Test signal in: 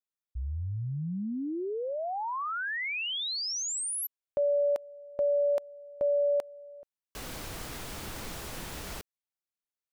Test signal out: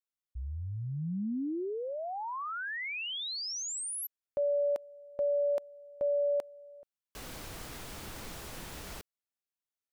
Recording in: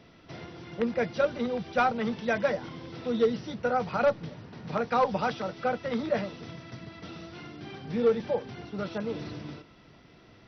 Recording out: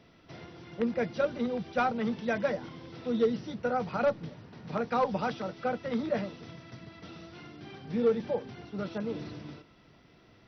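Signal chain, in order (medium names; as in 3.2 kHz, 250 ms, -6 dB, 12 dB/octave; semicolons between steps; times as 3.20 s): dynamic bell 240 Hz, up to +4 dB, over -38 dBFS, Q 0.81; trim -4 dB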